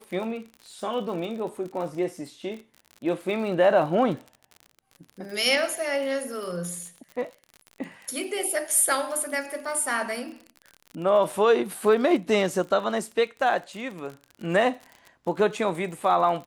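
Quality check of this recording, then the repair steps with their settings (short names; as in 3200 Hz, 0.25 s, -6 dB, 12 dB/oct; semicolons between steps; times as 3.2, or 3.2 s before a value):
crackle 44/s -34 dBFS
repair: de-click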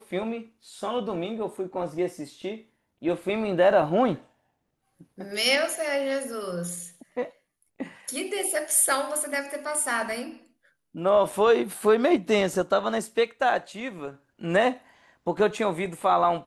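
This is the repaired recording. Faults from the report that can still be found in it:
none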